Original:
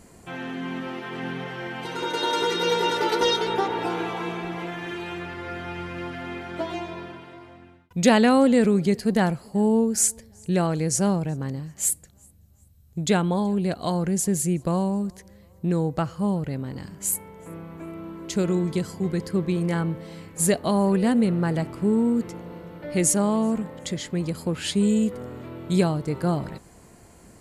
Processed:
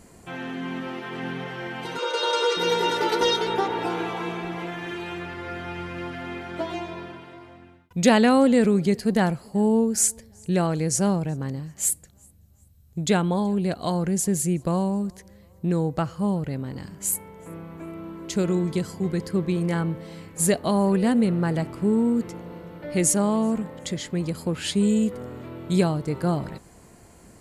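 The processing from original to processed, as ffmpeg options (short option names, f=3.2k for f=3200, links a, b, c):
-filter_complex "[0:a]asettb=1/sr,asplit=3[a][b][c];[a]atrim=end=1.984[d];[b]atrim=start=1.98:end=2.57,asetpts=PTS-STARTPTS,afade=t=in:d=0.004:c=qsin,afade=t=out:st=0.586:d=0.004:c=qsin,highpass=f=440:w=0.5412,highpass=f=440:w=1.3066,equalizer=f=520:t=q:w=4:g=9,equalizer=f=770:t=q:w=4:g=-8,equalizer=f=1.2k:t=q:w=4:g=6,equalizer=f=1.9k:t=q:w=4:g=-5,equalizer=f=2.7k:t=q:w=4:g=3,equalizer=f=4.8k:t=q:w=4:g=4,lowpass=f=9.5k:w=0.5412,lowpass=f=9.5k:w=1.3066[e];[c]atrim=start=2.566[f];[d][e]acrossfade=d=0.004:c1=hsin:c2=qsin[g];[g][f]acrossfade=d=0.004:c1=qsin:c2=hsin"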